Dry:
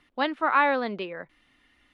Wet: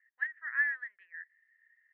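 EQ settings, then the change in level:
flat-topped band-pass 1,800 Hz, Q 7.5
high-frequency loss of the air 58 metres
+2.5 dB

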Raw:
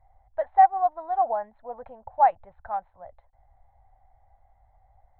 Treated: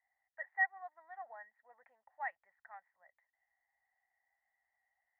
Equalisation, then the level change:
resonant band-pass 1,900 Hz, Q 19
+7.0 dB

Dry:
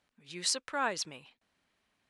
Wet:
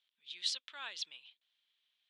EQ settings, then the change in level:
resonant band-pass 3,400 Hz, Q 5.9
+7.5 dB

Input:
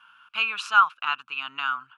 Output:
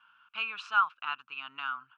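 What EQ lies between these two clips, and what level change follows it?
high-frequency loss of the air 120 metres
−7.0 dB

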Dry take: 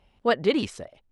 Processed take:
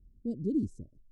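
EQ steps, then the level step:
Chebyshev band-stop filter 320–6,700 Hz, order 3
spectral tilt −3 dB per octave
−8.0 dB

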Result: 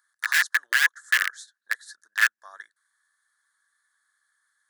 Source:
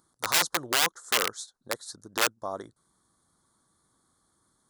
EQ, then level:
high-pass with resonance 1,700 Hz, resonance Q 13
−5.0 dB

